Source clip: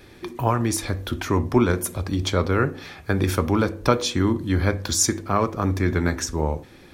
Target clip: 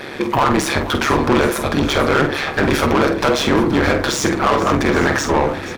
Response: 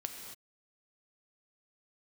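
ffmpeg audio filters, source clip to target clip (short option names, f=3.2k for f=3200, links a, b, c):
-filter_complex "[0:a]atempo=1.2,asplit=2[a][b];[b]highpass=f=720:p=1,volume=34dB,asoftclip=type=tanh:threshold=-3dB[c];[a][c]amix=inputs=2:normalize=0,lowpass=f=1.9k:p=1,volume=-6dB,tremolo=f=140:d=0.857,aecho=1:1:48|477|820:0.355|0.178|0.168"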